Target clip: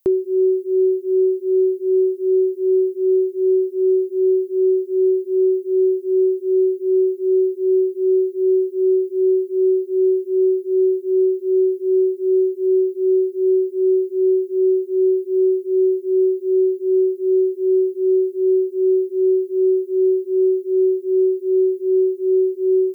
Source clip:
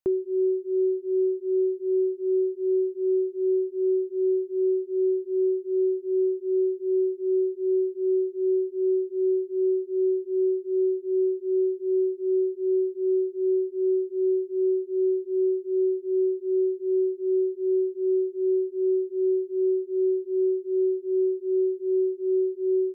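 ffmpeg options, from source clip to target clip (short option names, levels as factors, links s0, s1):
-af "aemphasis=mode=production:type=75fm,volume=2.51"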